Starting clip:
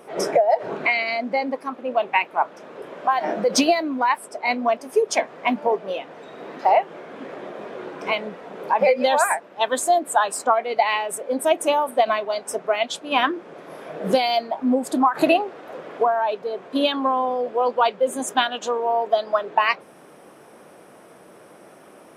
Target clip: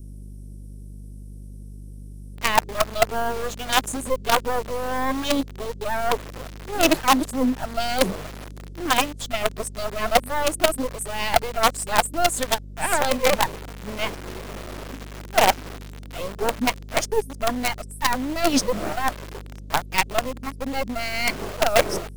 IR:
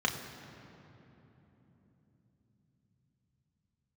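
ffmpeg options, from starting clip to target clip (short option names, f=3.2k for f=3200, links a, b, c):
-filter_complex "[0:a]areverse,highpass=78,aeval=exprs='val(0)+0.0141*(sin(2*PI*50*n/s)+sin(2*PI*2*50*n/s)/2+sin(2*PI*3*50*n/s)/3+sin(2*PI*4*50*n/s)/4+sin(2*PI*5*50*n/s)/5)':c=same,acrossover=split=320|5700[a][b][c];[b]acrusher=bits=3:dc=4:mix=0:aa=0.000001[d];[a][d][c]amix=inputs=3:normalize=0"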